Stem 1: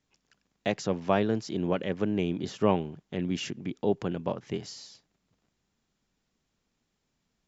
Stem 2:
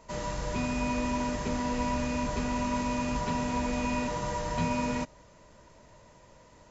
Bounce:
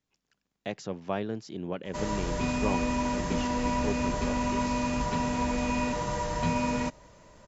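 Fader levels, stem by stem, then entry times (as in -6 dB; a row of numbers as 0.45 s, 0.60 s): -6.5 dB, +1.5 dB; 0.00 s, 1.85 s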